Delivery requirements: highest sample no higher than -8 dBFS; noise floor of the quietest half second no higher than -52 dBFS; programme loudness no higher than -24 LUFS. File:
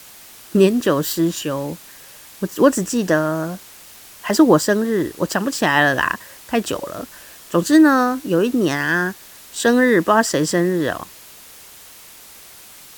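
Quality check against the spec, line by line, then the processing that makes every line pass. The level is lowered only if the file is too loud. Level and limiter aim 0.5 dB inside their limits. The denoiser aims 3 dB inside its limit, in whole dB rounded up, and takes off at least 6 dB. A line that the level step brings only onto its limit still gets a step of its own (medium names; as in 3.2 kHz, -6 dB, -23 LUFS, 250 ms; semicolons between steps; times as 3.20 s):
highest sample -1.5 dBFS: fail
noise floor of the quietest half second -42 dBFS: fail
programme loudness -18.0 LUFS: fail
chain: noise reduction 7 dB, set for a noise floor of -42 dBFS; trim -6.5 dB; peak limiter -8.5 dBFS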